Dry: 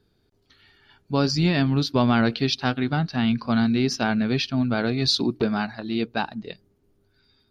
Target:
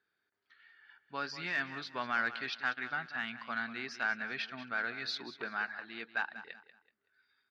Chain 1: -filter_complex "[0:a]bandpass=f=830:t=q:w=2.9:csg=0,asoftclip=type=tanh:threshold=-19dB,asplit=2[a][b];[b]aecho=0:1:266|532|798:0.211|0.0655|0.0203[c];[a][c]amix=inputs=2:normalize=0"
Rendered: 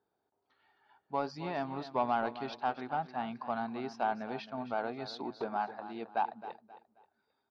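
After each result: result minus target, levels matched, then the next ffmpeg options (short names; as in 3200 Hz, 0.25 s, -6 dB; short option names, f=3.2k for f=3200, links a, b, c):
2000 Hz band -11.5 dB; echo 77 ms late
-filter_complex "[0:a]bandpass=f=1.7k:t=q:w=2.9:csg=0,asoftclip=type=tanh:threshold=-19dB,asplit=2[a][b];[b]aecho=0:1:266|532|798:0.211|0.0655|0.0203[c];[a][c]amix=inputs=2:normalize=0"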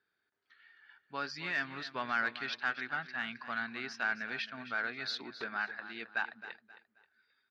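echo 77 ms late
-filter_complex "[0:a]bandpass=f=1.7k:t=q:w=2.9:csg=0,asoftclip=type=tanh:threshold=-19dB,asplit=2[a][b];[b]aecho=0:1:189|378|567:0.211|0.0655|0.0203[c];[a][c]amix=inputs=2:normalize=0"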